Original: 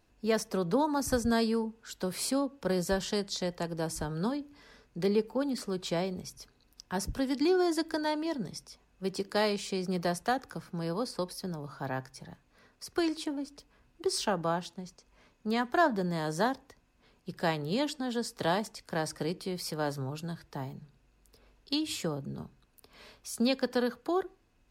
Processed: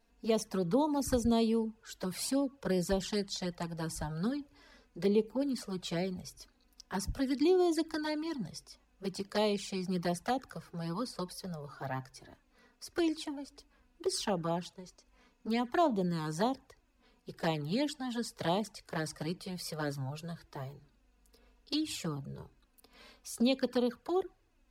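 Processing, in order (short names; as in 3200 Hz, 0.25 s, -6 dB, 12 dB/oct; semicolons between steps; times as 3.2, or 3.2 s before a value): envelope flanger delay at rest 4.4 ms, full sweep at -24.5 dBFS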